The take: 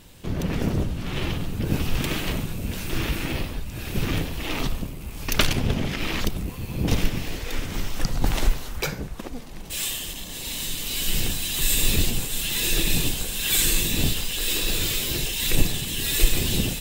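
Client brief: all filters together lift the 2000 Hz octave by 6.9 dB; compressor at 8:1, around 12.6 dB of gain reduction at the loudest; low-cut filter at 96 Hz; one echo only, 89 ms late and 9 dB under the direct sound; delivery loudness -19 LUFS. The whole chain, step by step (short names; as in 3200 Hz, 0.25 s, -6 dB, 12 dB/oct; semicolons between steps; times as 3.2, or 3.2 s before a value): HPF 96 Hz; bell 2000 Hz +9 dB; compressor 8:1, threshold -26 dBFS; echo 89 ms -9 dB; gain +9.5 dB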